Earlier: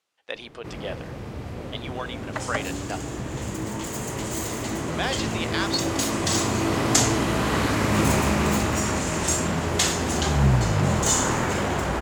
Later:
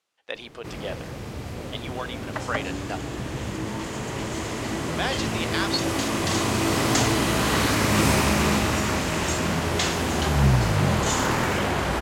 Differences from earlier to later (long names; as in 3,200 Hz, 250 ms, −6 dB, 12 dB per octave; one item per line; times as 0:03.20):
first sound: add high-shelf EQ 3,000 Hz +8.5 dB
second sound: add high-frequency loss of the air 94 metres